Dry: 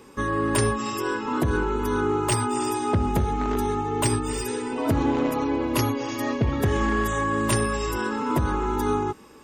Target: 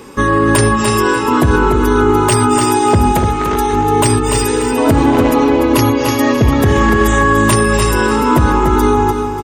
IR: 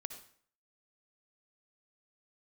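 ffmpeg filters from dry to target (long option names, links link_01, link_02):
-filter_complex "[0:a]asettb=1/sr,asplit=3[link_01][link_02][link_03];[link_01]atrim=end=3.124[link_04];[link_02]atrim=start=3.12:end=3.73,asetpts=PTS-STARTPTS,afade=type=in:duration=0.004:curve=qsin,afade=type=out:start_time=0.606:duration=0.004:curve=qsin,lowshelf=frequency=390:gain=-8.5[link_05];[link_03]atrim=start=3.726[link_06];[link_04][link_05]acrossfade=duration=0.004:curve1=hsin:curve2=qsin[link_07];[link_07][link_06]acrossfade=duration=0.004:curve1=qsin:curve2=hsin,asplit=2[link_08][link_09];[link_09]aecho=0:1:294|588|882:0.398|0.115|0.0335[link_10];[link_08][link_10]amix=inputs=2:normalize=0,alimiter=level_in=14dB:limit=-1dB:release=50:level=0:latency=1,volume=-1dB"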